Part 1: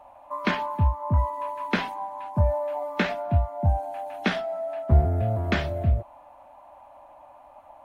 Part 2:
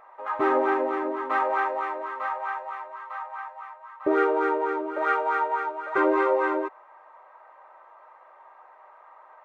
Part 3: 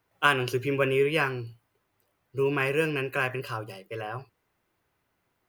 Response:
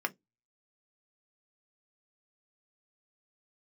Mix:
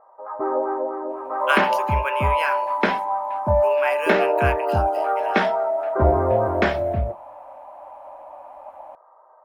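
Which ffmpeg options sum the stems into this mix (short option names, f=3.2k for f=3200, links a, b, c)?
-filter_complex "[0:a]adelay=1100,volume=-2.5dB,asplit=2[a][b];[b]volume=-5dB[c];[1:a]lowpass=f=1.3k:w=0.5412,lowpass=f=1.3k:w=1.3066,volume=-5.5dB[d];[2:a]highpass=1.3k,adelay=1250,volume=-2dB,asplit=2[e][f];[f]volume=-8.5dB[g];[3:a]atrim=start_sample=2205[h];[c][g]amix=inputs=2:normalize=0[i];[i][h]afir=irnorm=-1:irlink=0[j];[a][d][e][j]amix=inputs=4:normalize=0,equalizer=f=600:t=o:w=1.2:g=8.5"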